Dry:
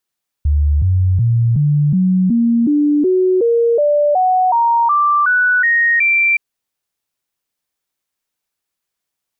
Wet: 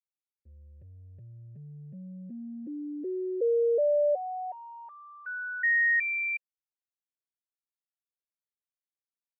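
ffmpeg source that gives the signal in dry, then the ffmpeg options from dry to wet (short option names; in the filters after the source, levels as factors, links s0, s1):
-f lavfi -i "aevalsrc='0.316*clip(min(mod(t,0.37),0.37-mod(t,0.37))/0.005,0,1)*sin(2*PI*73.5*pow(2,floor(t/0.37)/3)*mod(t,0.37))':d=5.92:s=44100"
-filter_complex "[0:a]agate=range=0.0224:threshold=0.355:ratio=3:detection=peak,asplit=3[s0][s1][s2];[s0]bandpass=f=530:t=q:w=8,volume=1[s3];[s1]bandpass=f=1840:t=q:w=8,volume=0.501[s4];[s2]bandpass=f=2480:t=q:w=8,volume=0.355[s5];[s3][s4][s5]amix=inputs=3:normalize=0"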